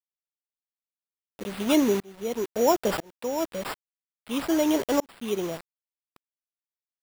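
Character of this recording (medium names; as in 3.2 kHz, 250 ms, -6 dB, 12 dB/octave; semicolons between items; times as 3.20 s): a quantiser's noise floor 6-bit, dither none; tremolo saw up 1 Hz, depth 100%; aliases and images of a low sample rate 6.3 kHz, jitter 0%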